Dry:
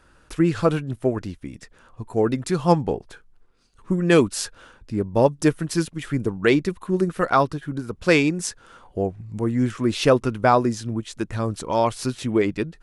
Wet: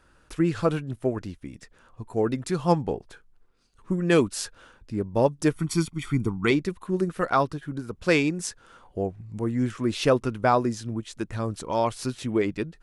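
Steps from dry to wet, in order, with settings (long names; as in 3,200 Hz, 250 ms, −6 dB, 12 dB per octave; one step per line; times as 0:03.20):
0:05.56–0:06.51: comb filter 0.9 ms, depth 84%
level −4 dB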